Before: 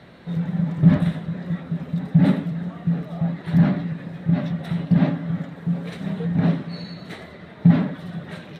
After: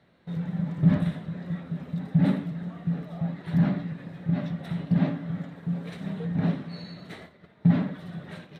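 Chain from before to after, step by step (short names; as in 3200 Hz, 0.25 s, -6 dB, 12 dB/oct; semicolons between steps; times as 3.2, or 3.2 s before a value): gate -38 dBFS, range -10 dB; flutter echo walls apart 9.8 m, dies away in 0.22 s; gain -6 dB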